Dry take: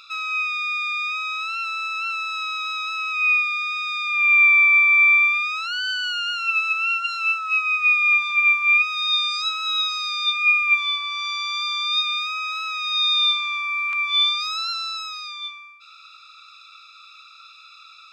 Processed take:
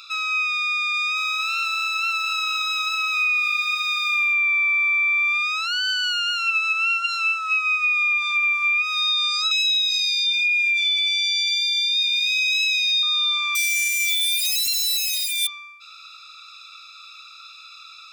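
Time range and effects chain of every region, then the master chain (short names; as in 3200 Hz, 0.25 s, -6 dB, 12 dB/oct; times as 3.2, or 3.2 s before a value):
0.94–4.34 high shelf 6000 Hz +4 dB + lo-fi delay 0.228 s, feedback 55%, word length 8-bit, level -11 dB
9.51–13.03 steep high-pass 2300 Hz 72 dB/oct + thin delay 0.104 s, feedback 42%, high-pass 4200 Hz, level -8 dB + fast leveller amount 70%
13.55–15.47 half-waves squared off + steep high-pass 1900 Hz 72 dB/oct + comb 5.1 ms, depth 99%
whole clip: high shelf 3800 Hz +9 dB; limiter -12 dBFS; compressor, threshold -18 dBFS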